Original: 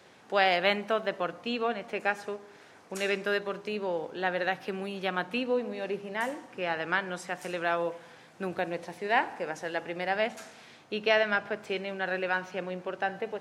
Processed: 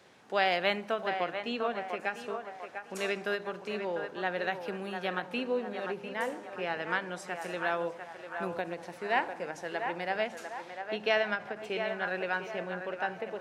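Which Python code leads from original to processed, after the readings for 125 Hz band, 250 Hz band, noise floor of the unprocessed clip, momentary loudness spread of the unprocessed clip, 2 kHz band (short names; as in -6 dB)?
-3.0 dB, -3.0 dB, -55 dBFS, 10 LU, -2.5 dB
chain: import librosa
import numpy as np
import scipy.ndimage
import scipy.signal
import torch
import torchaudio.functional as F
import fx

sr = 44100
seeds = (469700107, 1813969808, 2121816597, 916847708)

y = fx.echo_banded(x, sr, ms=698, feedback_pct=52, hz=970.0, wet_db=-5.5)
y = fx.end_taper(y, sr, db_per_s=240.0)
y = y * librosa.db_to_amplitude(-3.0)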